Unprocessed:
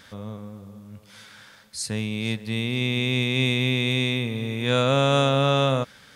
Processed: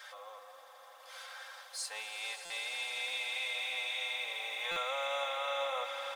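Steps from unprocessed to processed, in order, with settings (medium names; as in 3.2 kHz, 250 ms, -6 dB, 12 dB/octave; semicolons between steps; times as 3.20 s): companding laws mixed up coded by mu; steep high-pass 680 Hz 36 dB/octave; tilt shelf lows +6 dB, about 880 Hz; comb 3.8 ms, depth 93%; compression 3:1, threshold -32 dBFS, peak gain reduction 9.5 dB; flange 0.37 Hz, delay 3.2 ms, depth 2.6 ms, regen +81%; on a send: echo with a slow build-up 83 ms, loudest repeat 8, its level -14 dB; on the sum: buffer glitch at 2.45/4.71 s, samples 256, times 8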